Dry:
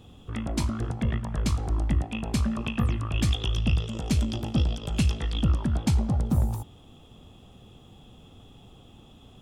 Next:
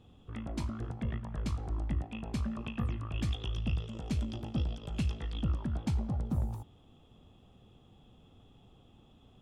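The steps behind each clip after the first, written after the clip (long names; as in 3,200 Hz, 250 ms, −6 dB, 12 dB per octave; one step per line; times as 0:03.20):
high-shelf EQ 4,900 Hz −9 dB
level −8.5 dB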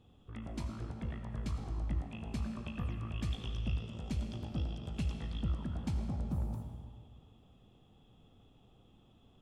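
convolution reverb RT60 1.9 s, pre-delay 45 ms, DRR 5.5 dB
level −4.5 dB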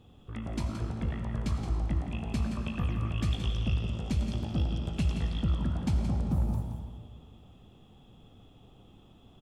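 single-tap delay 172 ms −8.5 dB
level +6.5 dB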